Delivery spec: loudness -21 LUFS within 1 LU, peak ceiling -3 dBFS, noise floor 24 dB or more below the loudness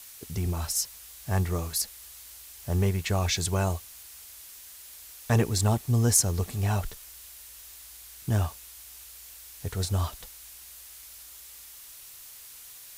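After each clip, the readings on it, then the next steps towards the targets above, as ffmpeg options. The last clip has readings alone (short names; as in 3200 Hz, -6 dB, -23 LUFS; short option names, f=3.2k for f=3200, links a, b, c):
noise floor -47 dBFS; noise floor target -52 dBFS; loudness -28.0 LUFS; peak -8.0 dBFS; loudness target -21.0 LUFS
-> -af "afftdn=nr=6:nf=-47"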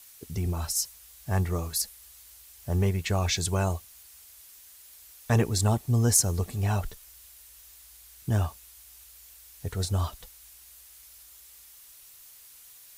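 noise floor -52 dBFS; loudness -28.0 LUFS; peak -8.0 dBFS; loudness target -21.0 LUFS
-> -af "volume=7dB,alimiter=limit=-3dB:level=0:latency=1"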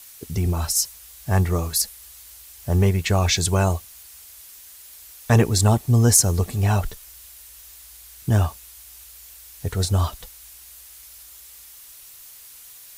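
loudness -21.0 LUFS; peak -3.0 dBFS; noise floor -45 dBFS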